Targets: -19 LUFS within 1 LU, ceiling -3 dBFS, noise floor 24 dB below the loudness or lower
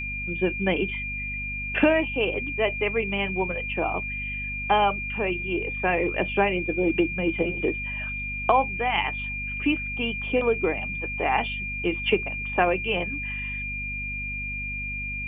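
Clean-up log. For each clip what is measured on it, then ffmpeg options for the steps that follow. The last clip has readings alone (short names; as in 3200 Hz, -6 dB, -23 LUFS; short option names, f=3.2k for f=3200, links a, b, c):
hum 50 Hz; harmonics up to 250 Hz; hum level -34 dBFS; steady tone 2400 Hz; tone level -30 dBFS; loudness -25.5 LUFS; peak -5.5 dBFS; loudness target -19.0 LUFS
-> -af "bandreject=f=50:t=h:w=4,bandreject=f=100:t=h:w=4,bandreject=f=150:t=h:w=4,bandreject=f=200:t=h:w=4,bandreject=f=250:t=h:w=4"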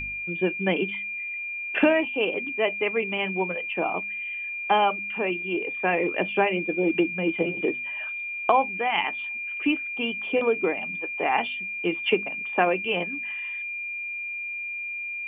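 hum none; steady tone 2400 Hz; tone level -30 dBFS
-> -af "bandreject=f=2.4k:w=30"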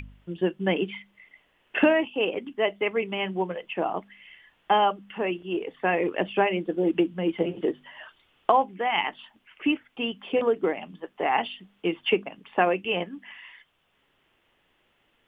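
steady tone none; loudness -26.5 LUFS; peak -5.5 dBFS; loudness target -19.0 LUFS
-> -af "volume=7.5dB,alimiter=limit=-3dB:level=0:latency=1"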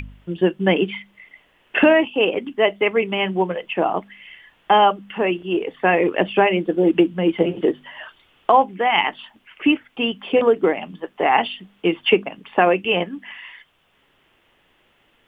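loudness -19.5 LUFS; peak -3.0 dBFS; noise floor -61 dBFS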